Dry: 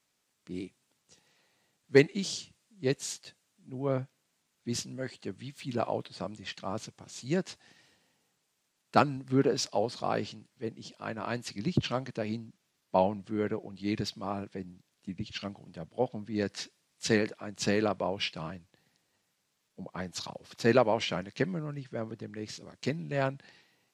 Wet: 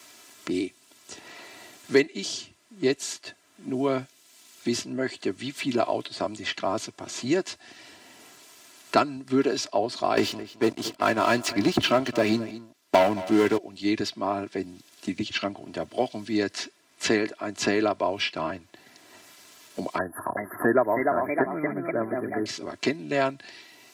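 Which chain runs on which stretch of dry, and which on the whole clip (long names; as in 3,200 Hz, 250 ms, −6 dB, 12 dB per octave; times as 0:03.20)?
0:10.17–0:13.58: leveller curve on the samples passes 3 + single-tap delay 217 ms −19.5 dB
0:19.98–0:22.46: linear-phase brick-wall band-stop 1,900–9,800 Hz + delay with pitch and tempo change per echo 387 ms, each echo +2 semitones, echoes 2, each echo −6 dB
whole clip: high-pass filter 220 Hz 6 dB per octave; comb filter 3 ms, depth 65%; multiband upward and downward compressor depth 70%; level +4.5 dB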